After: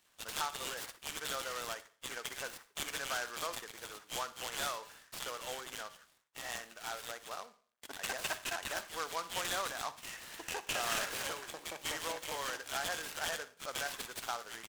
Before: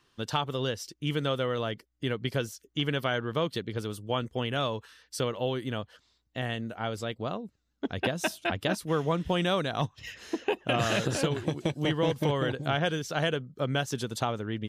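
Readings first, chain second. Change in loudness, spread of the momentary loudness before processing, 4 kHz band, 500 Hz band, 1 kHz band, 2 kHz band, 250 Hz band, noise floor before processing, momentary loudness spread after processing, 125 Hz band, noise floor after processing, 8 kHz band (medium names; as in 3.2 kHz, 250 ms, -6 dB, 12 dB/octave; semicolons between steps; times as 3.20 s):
-8.5 dB, 9 LU, -5.5 dB, -14.5 dB, -6.5 dB, -5.0 dB, -22.0 dB, -74 dBFS, 9 LU, -27.0 dB, -70 dBFS, +2.5 dB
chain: CVSD coder 32 kbps; high-pass 1.2 kHz 12 dB/octave; bands offset in time highs, lows 60 ms, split 2.1 kHz; Schroeder reverb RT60 0.45 s, DRR 14 dB; delay time shaken by noise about 3.9 kHz, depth 0.052 ms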